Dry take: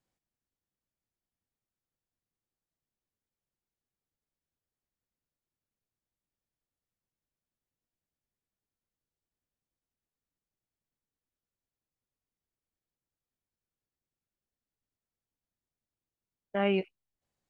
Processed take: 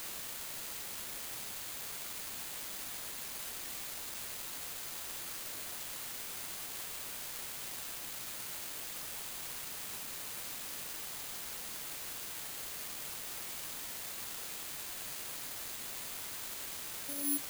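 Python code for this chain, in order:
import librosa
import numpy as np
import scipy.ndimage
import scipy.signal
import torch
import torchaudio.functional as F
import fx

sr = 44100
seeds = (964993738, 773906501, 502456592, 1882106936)

y = fx.vocoder_arp(x, sr, chord='bare fifth', root=56, every_ms=527)
y = fx.doppler_pass(y, sr, speed_mps=30, closest_m=11.0, pass_at_s=4.82)
y = scipy.signal.sosfilt(scipy.signal.butter(6, 510.0, 'lowpass', fs=sr, output='sos'), y)
y = fx.quant_dither(y, sr, seeds[0], bits=10, dither='triangular')
y = (np.kron(scipy.signal.resample_poly(y, 1, 4), np.eye(4)[0]) * 4)[:len(y)]
y = y * librosa.db_to_amplitude(17.5)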